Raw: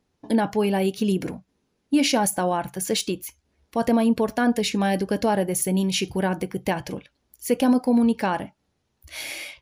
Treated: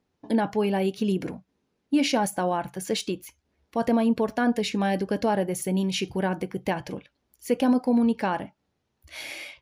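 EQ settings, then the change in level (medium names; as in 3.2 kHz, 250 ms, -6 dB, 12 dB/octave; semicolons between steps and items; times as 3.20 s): bass shelf 66 Hz -6.5 dB; treble shelf 6.4 kHz -9 dB; -2.0 dB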